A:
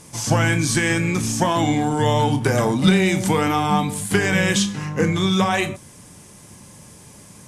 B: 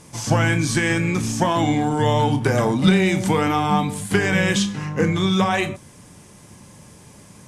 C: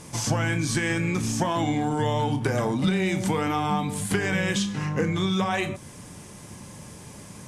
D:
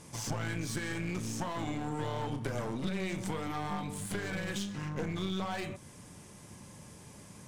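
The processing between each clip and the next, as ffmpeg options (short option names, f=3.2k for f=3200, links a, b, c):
-af "highshelf=f=6.1k:g=-6.5"
-af "acompressor=threshold=-28dB:ratio=2.5,volume=2.5dB"
-af "aeval=exprs='clip(val(0),-1,0.0316)':c=same,volume=-8.5dB"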